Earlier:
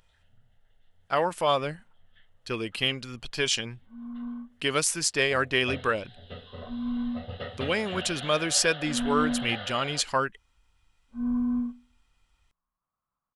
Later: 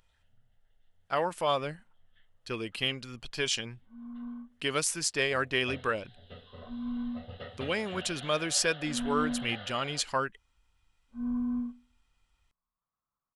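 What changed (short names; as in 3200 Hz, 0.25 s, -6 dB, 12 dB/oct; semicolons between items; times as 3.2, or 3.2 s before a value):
speech -4.0 dB; first sound -4.5 dB; second sound -6.5 dB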